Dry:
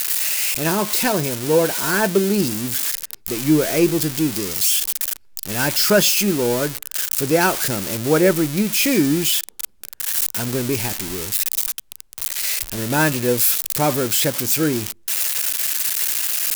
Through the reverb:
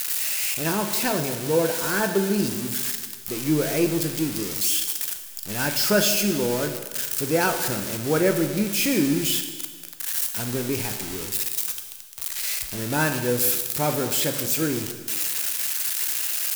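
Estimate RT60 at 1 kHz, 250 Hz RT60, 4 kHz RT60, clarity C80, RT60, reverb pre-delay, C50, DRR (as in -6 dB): 1.5 s, 1.4 s, 1.5 s, 9.5 dB, 1.5 s, 12 ms, 8.0 dB, 6.0 dB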